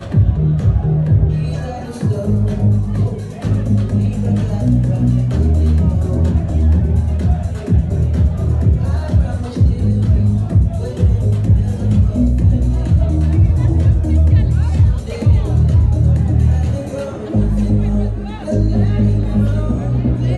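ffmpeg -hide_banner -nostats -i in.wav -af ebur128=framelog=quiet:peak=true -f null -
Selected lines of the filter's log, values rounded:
Integrated loudness:
  I:         -15.6 LUFS
  Threshold: -25.6 LUFS
Loudness range:
  LRA:         2.9 LU
  Threshold: -35.5 LUFS
  LRA low:   -17.0 LUFS
  LRA high:  -14.1 LUFS
True peak:
  Peak:       -3.7 dBFS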